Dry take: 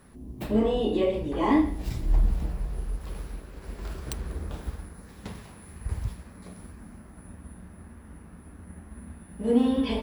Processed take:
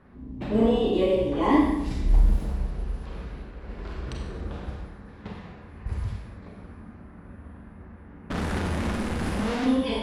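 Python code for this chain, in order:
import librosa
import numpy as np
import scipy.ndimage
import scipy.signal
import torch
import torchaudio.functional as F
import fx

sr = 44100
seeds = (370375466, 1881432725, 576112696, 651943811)

y = fx.clip_1bit(x, sr, at=(8.3, 9.66))
y = fx.env_lowpass(y, sr, base_hz=2200.0, full_db=-20.0)
y = fx.rev_schroeder(y, sr, rt60_s=0.8, comb_ms=31, drr_db=0.5)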